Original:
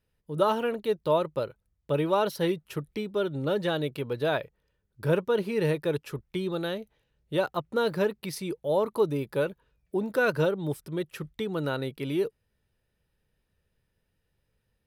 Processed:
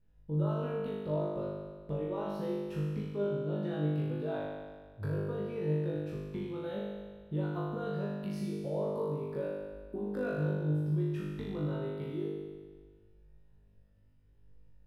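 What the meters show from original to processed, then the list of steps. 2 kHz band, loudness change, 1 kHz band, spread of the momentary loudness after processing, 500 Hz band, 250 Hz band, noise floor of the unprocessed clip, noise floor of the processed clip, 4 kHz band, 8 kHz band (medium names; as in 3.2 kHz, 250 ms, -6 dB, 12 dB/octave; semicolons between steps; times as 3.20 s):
-14.0 dB, -6.5 dB, -12.0 dB, 8 LU, -8.5 dB, -3.5 dB, -77 dBFS, -62 dBFS, -16.0 dB, under -15 dB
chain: tilt EQ -3.5 dB/octave; compression 10:1, threshold -32 dBFS, peak gain reduction 18.5 dB; on a send: flutter echo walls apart 3.4 m, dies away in 1.5 s; on the sum: trim -6.5 dB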